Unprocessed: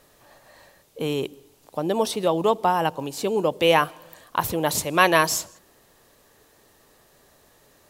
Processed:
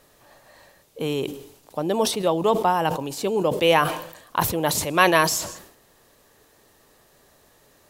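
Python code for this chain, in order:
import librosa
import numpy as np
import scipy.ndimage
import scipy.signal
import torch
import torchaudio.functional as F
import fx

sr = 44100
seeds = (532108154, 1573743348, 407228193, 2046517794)

y = fx.sustainer(x, sr, db_per_s=83.0)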